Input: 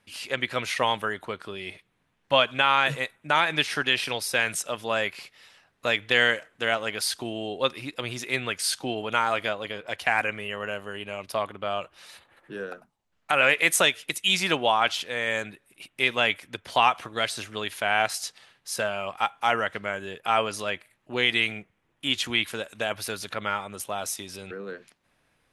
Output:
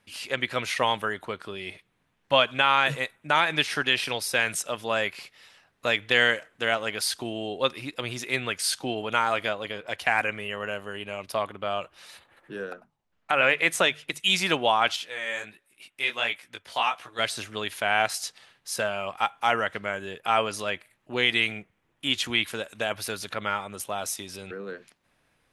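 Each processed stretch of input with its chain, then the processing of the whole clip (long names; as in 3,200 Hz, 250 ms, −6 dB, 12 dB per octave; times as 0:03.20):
0:12.73–0:14.20: low-pass filter 3,500 Hz 6 dB per octave + mains-hum notches 50/100/150 Hz
0:14.96–0:17.19: low-shelf EQ 480 Hz −10 dB + chorus effect 1.4 Hz, delay 16 ms, depth 5.4 ms
whole clip: no processing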